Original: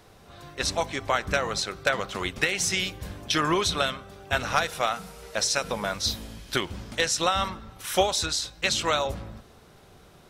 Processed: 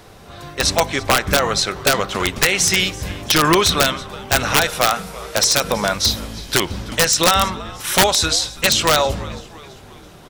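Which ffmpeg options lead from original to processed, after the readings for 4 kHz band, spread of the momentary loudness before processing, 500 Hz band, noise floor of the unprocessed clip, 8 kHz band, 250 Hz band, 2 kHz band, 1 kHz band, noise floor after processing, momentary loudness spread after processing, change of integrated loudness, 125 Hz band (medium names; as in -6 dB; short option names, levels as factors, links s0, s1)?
+10.5 dB, 10 LU, +8.5 dB, -53 dBFS, +11.5 dB, +10.0 dB, +8.5 dB, +8.5 dB, -42 dBFS, 11 LU, +10.0 dB, +10.5 dB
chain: -filter_complex "[0:a]acontrast=39,asplit=5[s0][s1][s2][s3][s4];[s1]adelay=331,afreqshift=-81,volume=0.1[s5];[s2]adelay=662,afreqshift=-162,volume=0.0501[s6];[s3]adelay=993,afreqshift=-243,volume=0.0251[s7];[s4]adelay=1324,afreqshift=-324,volume=0.0124[s8];[s0][s5][s6][s7][s8]amix=inputs=5:normalize=0,aeval=exprs='(mod(2.99*val(0)+1,2)-1)/2.99':c=same,volume=1.68"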